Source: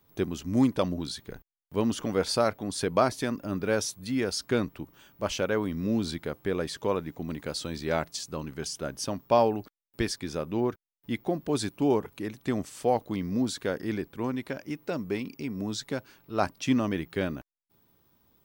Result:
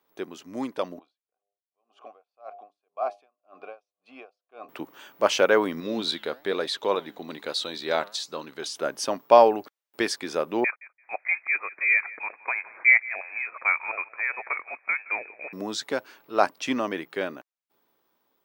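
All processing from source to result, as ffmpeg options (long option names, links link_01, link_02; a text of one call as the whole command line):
ffmpeg -i in.wav -filter_complex "[0:a]asettb=1/sr,asplit=3[link_01][link_02][link_03];[link_01]atrim=end=0.994[link_04];[link_02]atrim=start=0.99:end=4.69,asetpts=PTS-STARTPTS,afade=type=in:duration=0.004:curve=qsin,afade=type=out:start_time=3.696:duration=0.004:curve=qsin,asplit=3[link_05][link_06][link_07];[link_05]bandpass=frequency=730:width_type=q:width=8,volume=0dB[link_08];[link_06]bandpass=frequency=1090:width_type=q:width=8,volume=-6dB[link_09];[link_07]bandpass=frequency=2440:width_type=q:width=8,volume=-9dB[link_10];[link_08][link_09][link_10]amix=inputs=3:normalize=0,bandreject=frequency=101.4:width_type=h:width=4,bandreject=frequency=202.8:width_type=h:width=4,bandreject=frequency=304.2:width_type=h:width=4,bandreject=frequency=405.6:width_type=h:width=4,bandreject=frequency=507:width_type=h:width=4,bandreject=frequency=608.4:width_type=h:width=4,bandreject=frequency=709.8:width_type=h:width=4,bandreject=frequency=811.2:width_type=h:width=4,aeval=exprs='val(0)*pow(10,-39*(0.5-0.5*cos(2*PI*1.9*n/s))/20)':channel_layout=same[link_11];[link_03]atrim=start=4.686[link_12];[link_04][link_11]acrossfade=duration=0.004:curve1=hsin:curve2=qsin[link_13];[link_13][link_12]acrossfade=duration=0.004:curve1=qsin:curve2=hsin,asettb=1/sr,asplit=3[link_14][link_15][link_16];[link_14]atrim=end=5.804[link_17];[link_15]atrim=start=5.8:end=8.76,asetpts=PTS-STARTPTS,afade=type=in:duration=0.004:curve=qsin,afade=type=out:start_time=2.956:duration=0.004:curve=qsin,equalizer=frequency=3800:width=4.7:gain=14,flanger=delay=0.7:depth=9.5:regen=86:speed=1.1:shape=triangular[link_18];[link_16]atrim=start=8.756[link_19];[link_17][link_18]acrossfade=duration=0.004:curve1=hsin:curve2=qsin[link_20];[link_20][link_19]acrossfade=duration=0.004:curve1=qsin:curve2=hsin,asettb=1/sr,asplit=3[link_21][link_22][link_23];[link_21]atrim=end=10.644[link_24];[link_22]atrim=start=10.64:end=15.53,asetpts=PTS-STARTPTS,afade=type=in:duration=0.004:curve=qsin,afade=type=out:start_time=4.886:duration=0.004:curve=qsin,highpass=frequency=440:width=0.5412,highpass=frequency=440:width=1.3066,aecho=1:1:170|340:0.1|0.017,atrim=end_sample=215649,lowpass=frequency=2400:width_type=q:width=0.5098,lowpass=frequency=2400:width_type=q:width=0.6013,lowpass=frequency=2400:width_type=q:width=0.9,lowpass=frequency=2400:width_type=q:width=2.563,afreqshift=-2800[link_25];[link_23]atrim=start=15.526[link_26];[link_24][link_25]acrossfade=duration=0.004:curve1=hsin:curve2=qsin[link_27];[link_27][link_26]acrossfade=duration=0.004:curve1=qsin:curve2=hsin,highpass=440,highshelf=frequency=4100:gain=-8,dynaudnorm=framelen=720:gausssize=7:maxgain=11.5dB" out.wav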